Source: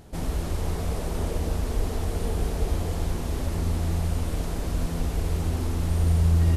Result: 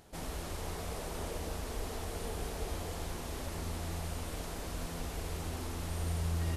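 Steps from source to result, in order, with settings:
low-shelf EQ 380 Hz −10.5 dB
level −4 dB

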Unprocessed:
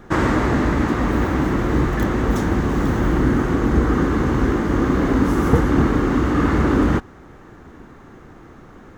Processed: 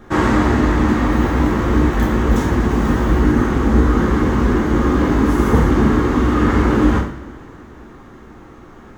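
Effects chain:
coupled-rooms reverb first 0.52 s, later 3 s, from −22 dB, DRR −2 dB
level −1.5 dB

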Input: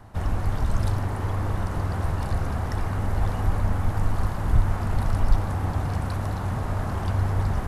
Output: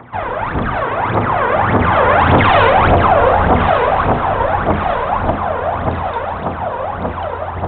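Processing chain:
source passing by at 0:02.58, 40 m/s, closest 4.8 metres
high-pass filter 590 Hz 12 dB per octave
spectral tilt −3.5 dB per octave
in parallel at +1.5 dB: downward compressor, threshold −56 dBFS, peak gain reduction 20.5 dB
on the sum: hard clipping −40 dBFS, distortion −8 dB
phase shifter 1.7 Hz, delay 2.2 ms, feedback 76%
delay that swaps between a low-pass and a high-pass 578 ms, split 1,000 Hz, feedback 67%, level −10 dB
on a send at −9 dB: convolution reverb RT60 0.35 s, pre-delay 25 ms
on the sum: downsampling to 8,000 Hz
boost into a limiter +34 dB
level −1 dB

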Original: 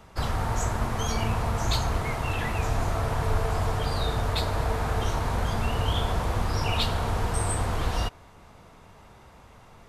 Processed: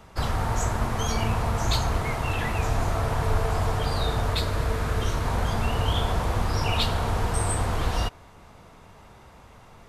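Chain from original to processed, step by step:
0:04.34–0:05.25: parametric band 800 Hz −8 dB 0.49 octaves
level +1.5 dB

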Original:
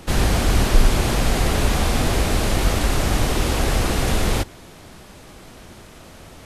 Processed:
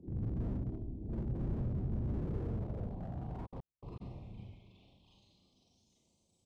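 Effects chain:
spectral envelope exaggerated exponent 3
0:00.50–0:01.12: tuned comb filter 320 Hz, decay 0.21 s, harmonics all, mix 80%
dynamic equaliser 120 Hz, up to +8 dB, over −40 dBFS, Q 2.2
brickwall limiter −17.5 dBFS, peak gain reduction 10 dB
Butterworth band-reject 1,600 Hz, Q 0.7
parametric band 490 Hz −13 dB 2 octaves
on a send: single-tap delay 781 ms −16.5 dB
on the sum: four-comb reverb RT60 0.98 s, combs from 32 ms, DRR −7.5 dB
band-pass filter sweep 390 Hz → 7,400 Hz, 0:02.20–0:06.16
0:03.45–0:04.00: gate pattern "...xx..x" 200 BPM −60 dB
slew-rate limiting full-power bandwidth 1.8 Hz
level +5 dB

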